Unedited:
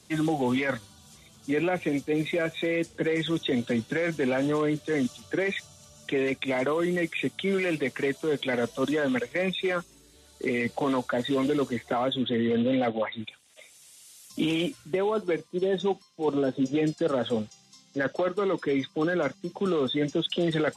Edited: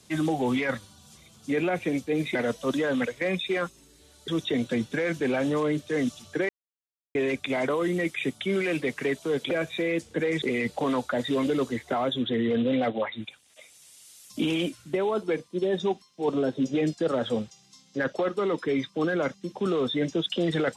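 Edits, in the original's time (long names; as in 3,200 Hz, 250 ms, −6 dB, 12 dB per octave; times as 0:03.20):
0:02.35–0:03.26: swap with 0:08.49–0:10.42
0:05.47–0:06.13: silence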